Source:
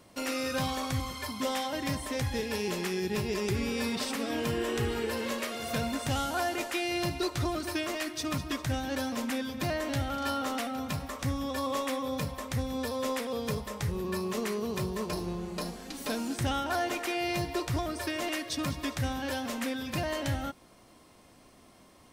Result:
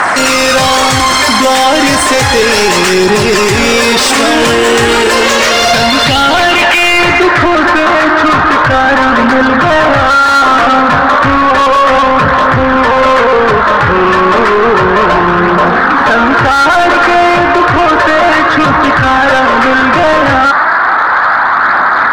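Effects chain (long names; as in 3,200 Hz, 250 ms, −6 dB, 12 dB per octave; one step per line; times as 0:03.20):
noise in a band 660–1,900 Hz −49 dBFS
low-pass filter sweep 8,100 Hz → 1,400 Hz, 0:05.11–0:07.80
mid-hump overdrive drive 24 dB, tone 3,000 Hz, clips at −16.5 dBFS
phase shifter 0.32 Hz, delay 4.1 ms, feedback 28%
boost into a limiter +24.5 dB
level −1 dB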